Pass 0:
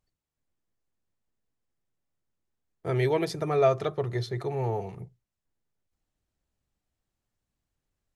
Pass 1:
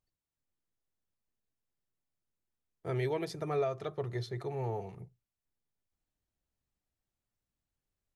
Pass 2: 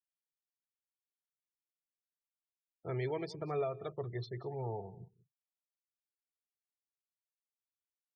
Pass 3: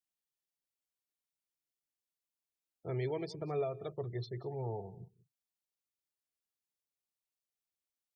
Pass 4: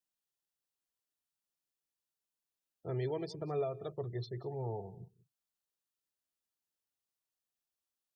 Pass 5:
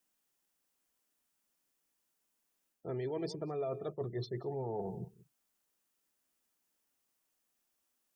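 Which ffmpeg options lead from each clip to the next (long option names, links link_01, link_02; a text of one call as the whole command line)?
ffmpeg -i in.wav -af "alimiter=limit=-17dB:level=0:latency=1:release=378,volume=-6.5dB" out.wav
ffmpeg -i in.wav -filter_complex "[0:a]afftfilt=real='re*gte(hypot(re,im),0.00631)':imag='im*gte(hypot(re,im),0.00631)':win_size=1024:overlap=0.75,asplit=2[link_01][link_02];[link_02]adelay=186.6,volume=-20dB,highshelf=frequency=4000:gain=-4.2[link_03];[link_01][link_03]amix=inputs=2:normalize=0,volume=-3.5dB" out.wav
ffmpeg -i in.wav -af "equalizer=frequency=1400:width=1:gain=-6,volume=1dB" out.wav
ffmpeg -i in.wav -af "bandreject=frequency=2200:width=5.7" out.wav
ffmpeg -i in.wav -af "equalizer=frequency=100:width_type=o:width=0.67:gain=-10,equalizer=frequency=250:width_type=o:width=0.67:gain=5,equalizer=frequency=4000:width_type=o:width=0.67:gain=-5,areverse,acompressor=threshold=-46dB:ratio=6,areverse,volume=10.5dB" out.wav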